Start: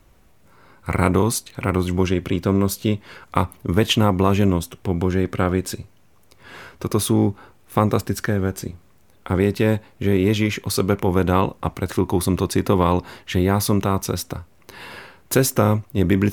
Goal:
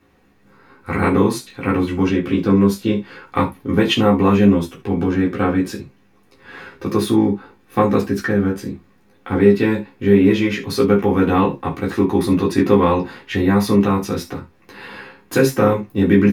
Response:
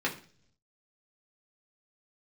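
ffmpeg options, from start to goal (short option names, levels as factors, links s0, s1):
-filter_complex "[0:a]asplit=2[s0][s1];[s1]adelay=15,volume=0.355[s2];[s0][s2]amix=inputs=2:normalize=0[s3];[1:a]atrim=start_sample=2205,atrim=end_sample=3969[s4];[s3][s4]afir=irnorm=-1:irlink=0,volume=0.501"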